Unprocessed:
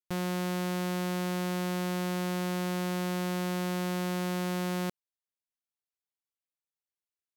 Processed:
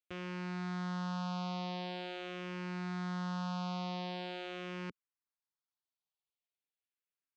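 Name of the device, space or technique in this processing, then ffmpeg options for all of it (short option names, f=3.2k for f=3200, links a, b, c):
barber-pole phaser into a guitar amplifier: -filter_complex "[0:a]asplit=2[a][b];[b]afreqshift=-0.44[c];[a][c]amix=inputs=2:normalize=1,asoftclip=type=tanh:threshold=-32dB,highpass=110,equalizer=f=210:t=q:w=4:g=-8,equalizer=f=350:t=q:w=4:g=-8,equalizer=f=560:t=q:w=4:g=-6,equalizer=f=1.9k:t=q:w=4:g=-4,lowpass=f=4.6k:w=0.5412,lowpass=f=4.6k:w=1.3066,volume=2dB"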